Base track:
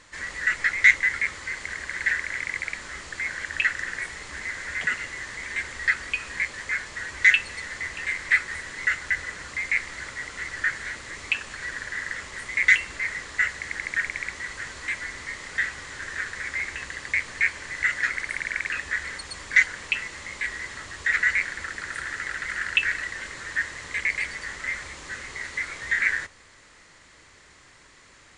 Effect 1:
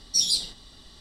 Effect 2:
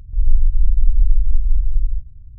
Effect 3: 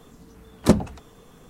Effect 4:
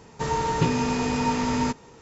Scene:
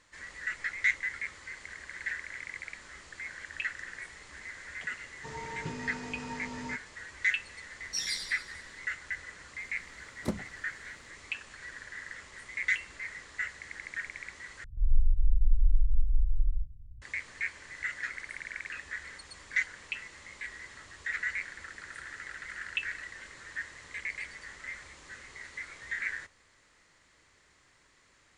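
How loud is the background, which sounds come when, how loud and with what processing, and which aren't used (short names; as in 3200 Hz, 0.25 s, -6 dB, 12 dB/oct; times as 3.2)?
base track -11.5 dB
5.04 add 4 -16.5 dB
7.79 add 1 -12 dB + thinning echo 94 ms, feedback 57%, level -7.5 dB
9.59 add 3 -16.5 dB
14.64 replace with 2 -10 dB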